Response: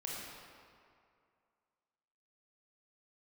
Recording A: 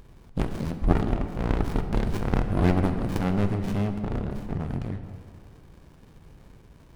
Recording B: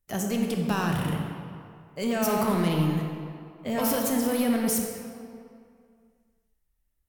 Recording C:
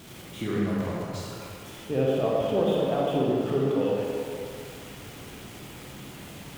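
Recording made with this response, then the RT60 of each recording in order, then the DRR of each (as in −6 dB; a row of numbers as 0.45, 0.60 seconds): C; 2.3, 2.3, 2.3 seconds; 7.0, 1.5, −4.5 decibels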